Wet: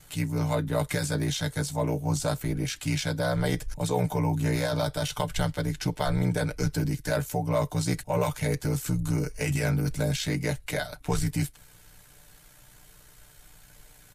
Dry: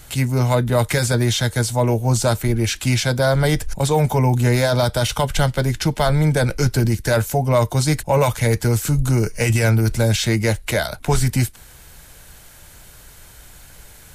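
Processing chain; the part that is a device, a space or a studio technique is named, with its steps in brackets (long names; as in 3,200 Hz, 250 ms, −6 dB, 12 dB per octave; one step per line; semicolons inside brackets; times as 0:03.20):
ring-modulated robot voice (ring modulation 31 Hz; comb filter 6.7 ms)
level −8.5 dB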